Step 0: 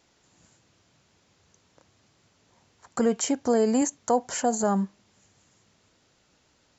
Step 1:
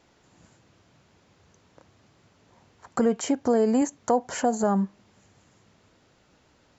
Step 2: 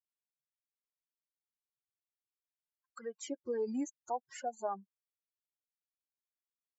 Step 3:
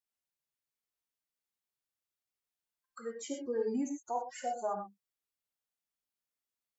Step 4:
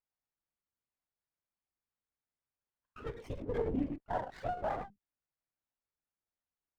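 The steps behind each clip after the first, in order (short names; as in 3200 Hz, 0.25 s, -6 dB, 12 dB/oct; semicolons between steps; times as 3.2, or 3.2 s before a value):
high shelf 3300 Hz -10 dB; in parallel at +3 dB: compressor, threshold -31 dBFS, peak gain reduction 13 dB; on the sum: gain -2 dB
per-bin expansion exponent 3; low shelf 210 Hz -12 dB; tape flanging out of phase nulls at 0.51 Hz, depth 2.3 ms; gain -5.5 dB
non-linear reverb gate 0.14 s flat, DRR 2 dB
LPC vocoder at 8 kHz whisper; running maximum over 9 samples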